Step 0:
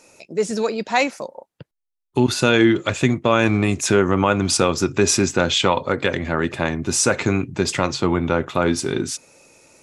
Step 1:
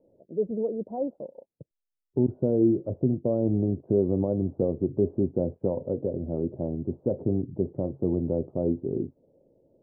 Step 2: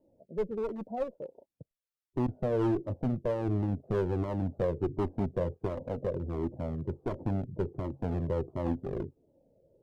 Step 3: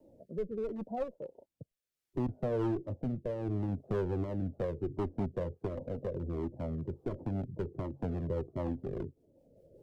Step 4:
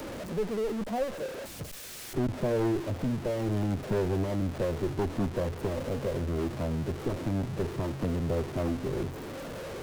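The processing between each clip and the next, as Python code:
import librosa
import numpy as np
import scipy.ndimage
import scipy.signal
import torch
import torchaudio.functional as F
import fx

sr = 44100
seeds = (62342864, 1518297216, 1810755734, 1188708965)

y1 = scipy.signal.sosfilt(scipy.signal.butter(6, 610.0, 'lowpass', fs=sr, output='sos'), x)
y1 = F.gain(torch.from_numpy(y1), -6.0).numpy()
y2 = fx.clip_asym(y1, sr, top_db=-28.0, bottom_db=-16.0)
y2 = fx.comb_cascade(y2, sr, direction='falling', hz=1.4)
y2 = F.gain(torch.from_numpy(y2), 2.0).numpy()
y3 = fx.rotary_switch(y2, sr, hz=0.7, then_hz=5.0, switch_at_s=4.23)
y3 = fx.band_squash(y3, sr, depth_pct=40)
y3 = F.gain(torch.from_numpy(y3), -2.0).numpy()
y4 = y3 + 0.5 * 10.0 ** (-36.5 / 20.0) * np.sign(y3)
y4 = fx.doppler_dist(y4, sr, depth_ms=0.49)
y4 = F.gain(torch.from_numpy(y4), 3.0).numpy()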